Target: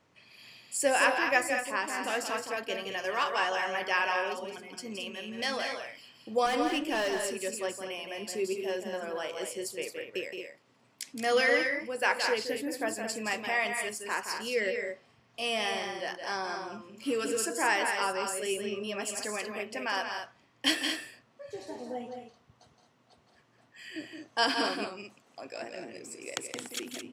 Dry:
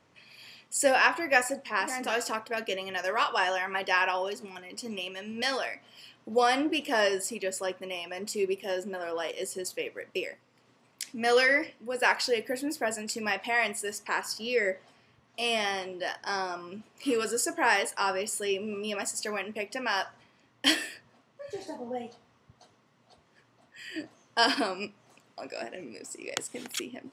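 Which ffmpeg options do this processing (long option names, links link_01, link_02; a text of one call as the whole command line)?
ffmpeg -i in.wav -filter_complex "[0:a]asettb=1/sr,asplit=3[link_01][link_02][link_03];[link_01]atrim=end=6.464[link_04];[link_02]atrim=start=6.46:end=7.52,asetpts=PTS-STARTPTS,afade=type=in:duration=0.004:curve=qsin,afade=type=out:start_time=1.056:duration=0.004:curve=qsin,asoftclip=type=hard:threshold=-23dB[link_05];[link_03]atrim=start=7.516[link_06];[link_04][link_05]acrossfade=duration=0.004:curve1=hsin:curve2=qsin[link_07];[link_07][link_06]acrossfade=duration=0.004:curve1=qsin:curve2=hsin,asplit=2[link_08][link_09];[link_09]aecho=0:1:169.1|218.7:0.447|0.398[link_10];[link_08][link_10]amix=inputs=2:normalize=0,volume=-3dB" out.wav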